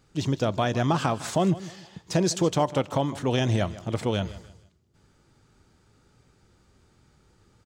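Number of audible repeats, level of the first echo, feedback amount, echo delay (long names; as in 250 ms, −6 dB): 2, −17.0 dB, 32%, 155 ms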